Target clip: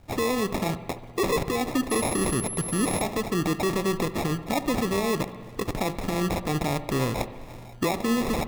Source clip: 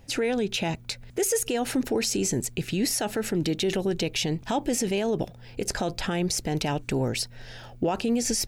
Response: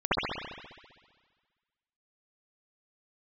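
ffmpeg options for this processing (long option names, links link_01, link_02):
-filter_complex "[0:a]acrusher=samples=29:mix=1:aa=0.000001,asettb=1/sr,asplit=3[link_01][link_02][link_03];[link_01]atrim=end=1.904[link_04];[link_02]atrim=start=1.9:end=3.02,asetpts=PTS-STARTPTS,afade=type=in:duration=0.004:curve=qsin,afade=type=out:start_time=1.116:duration=0.004:curve=qsin,aeval=exprs='val(0)+0.0251*sin(2*PI*11000*n/s)':channel_layout=same[link_05];[link_03]atrim=start=3.016[link_06];[link_04][link_05]acrossfade=duration=0.004:curve1=hsin:curve2=qsin[link_07];[link_07][link_06]acrossfade=duration=0.004:curve1=qsin:curve2=hsin,asplit=2[link_08][link_09];[1:a]atrim=start_sample=2205[link_10];[link_09][link_10]afir=irnorm=-1:irlink=0,volume=-28dB[link_11];[link_08][link_11]amix=inputs=2:normalize=0"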